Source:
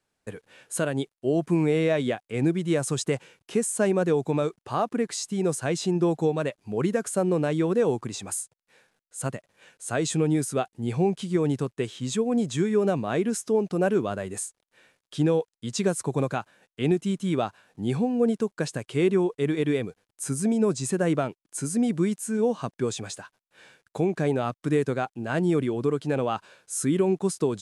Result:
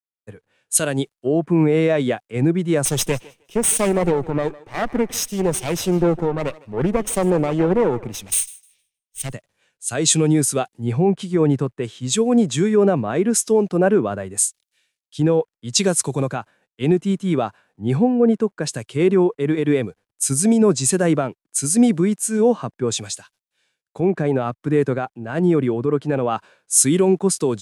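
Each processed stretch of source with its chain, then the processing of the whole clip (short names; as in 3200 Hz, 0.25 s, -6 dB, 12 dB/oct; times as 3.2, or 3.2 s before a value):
2.85–9.33 minimum comb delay 0.35 ms + thinning echo 0.156 s, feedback 34%, high-pass 300 Hz, level -17 dB + Doppler distortion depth 0.18 ms
whole clip: maximiser +16 dB; three-band expander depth 100%; gain -8 dB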